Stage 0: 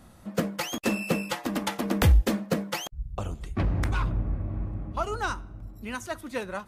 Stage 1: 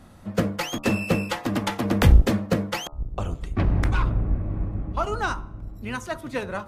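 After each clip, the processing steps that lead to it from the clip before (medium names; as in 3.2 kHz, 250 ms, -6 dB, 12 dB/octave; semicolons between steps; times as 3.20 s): octave divider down 1 oct, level -5 dB; treble shelf 6.2 kHz -7 dB; de-hum 73.22 Hz, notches 19; trim +4 dB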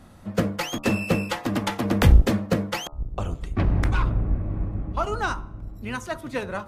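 no audible change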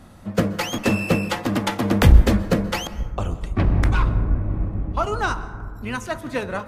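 plate-style reverb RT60 1.7 s, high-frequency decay 0.3×, pre-delay 115 ms, DRR 15 dB; trim +3 dB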